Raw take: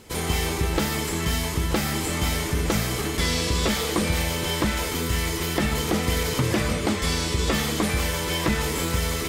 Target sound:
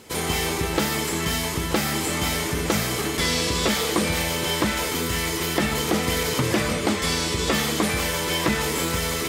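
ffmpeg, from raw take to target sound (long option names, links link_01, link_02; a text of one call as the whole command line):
ffmpeg -i in.wav -af "highpass=frequency=160:poles=1,volume=2.5dB" out.wav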